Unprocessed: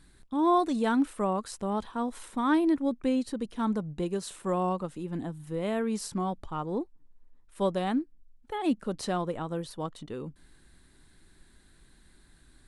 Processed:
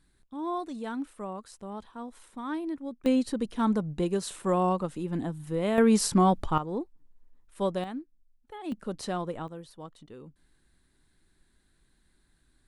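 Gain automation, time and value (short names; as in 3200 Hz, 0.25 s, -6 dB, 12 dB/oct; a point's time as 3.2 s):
-9 dB
from 3.06 s +3 dB
from 5.78 s +9.5 dB
from 6.58 s -1 dB
from 7.84 s -9 dB
from 8.72 s -2 dB
from 9.48 s -9 dB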